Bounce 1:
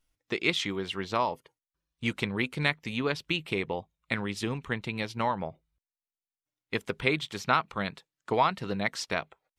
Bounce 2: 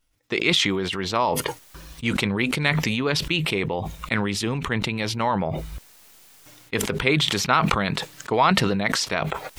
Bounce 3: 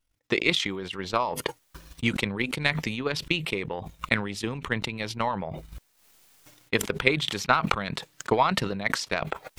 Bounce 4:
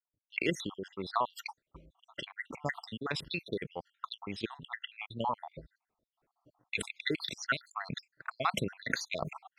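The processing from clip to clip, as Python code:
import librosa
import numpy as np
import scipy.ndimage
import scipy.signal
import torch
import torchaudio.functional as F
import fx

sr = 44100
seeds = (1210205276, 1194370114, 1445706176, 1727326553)

y1 = fx.sustainer(x, sr, db_per_s=22.0)
y1 = y1 * 10.0 ** (4.5 / 20.0)
y2 = fx.transient(y1, sr, attack_db=10, sustain_db=-9)
y2 = y2 * 10.0 ** (-7.5 / 20.0)
y3 = fx.spec_dropout(y2, sr, seeds[0], share_pct=72)
y3 = fx.highpass(y3, sr, hz=91.0, slope=6)
y3 = fx.env_lowpass(y3, sr, base_hz=880.0, full_db=-29.5)
y3 = y3 * 10.0 ** (-3.0 / 20.0)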